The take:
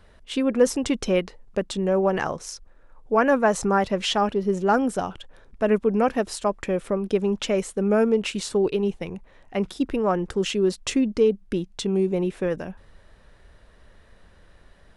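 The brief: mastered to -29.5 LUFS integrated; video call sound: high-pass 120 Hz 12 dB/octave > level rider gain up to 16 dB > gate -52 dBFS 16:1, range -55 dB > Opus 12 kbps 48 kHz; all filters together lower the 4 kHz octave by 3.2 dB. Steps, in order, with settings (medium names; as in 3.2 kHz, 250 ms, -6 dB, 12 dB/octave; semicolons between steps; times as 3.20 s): high-pass 120 Hz 12 dB/octave; peaking EQ 4 kHz -4.5 dB; level rider gain up to 16 dB; gate -52 dBFS 16:1, range -55 dB; trim -5.5 dB; Opus 12 kbps 48 kHz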